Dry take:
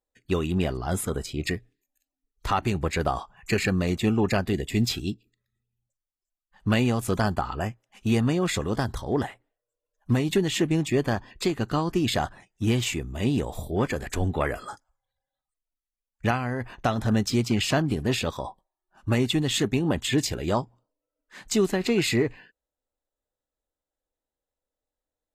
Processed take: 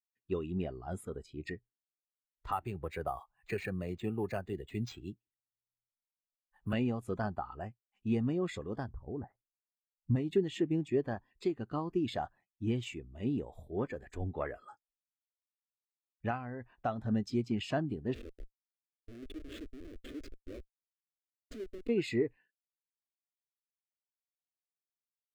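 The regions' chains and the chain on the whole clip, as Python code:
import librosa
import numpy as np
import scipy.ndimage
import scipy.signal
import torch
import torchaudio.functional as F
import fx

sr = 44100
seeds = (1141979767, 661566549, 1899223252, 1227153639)

y = fx.chain(x, sr, fx.peak_eq(hz=240.0, db=-4.5, octaves=0.93),
    fx.resample_bad(factor=4, down='none', up='hold'),
    fx.band_squash(depth_pct=40), at=(2.52, 6.73))
y = fx.chain(y, sr, fx.low_shelf(hz=220.0, db=10.0),
    fx.level_steps(step_db=9),
    fx.lowpass(hz=1700.0, slope=24), at=(8.89, 10.16))
y = fx.chain(y, sr, fx.schmitt(flips_db=-23.5),
    fx.fixed_phaser(hz=360.0, stages=4), at=(18.14, 21.89))
y = fx.bass_treble(y, sr, bass_db=-4, treble_db=-3)
y = fx.spectral_expand(y, sr, expansion=1.5)
y = y * librosa.db_to_amplitude(-8.0)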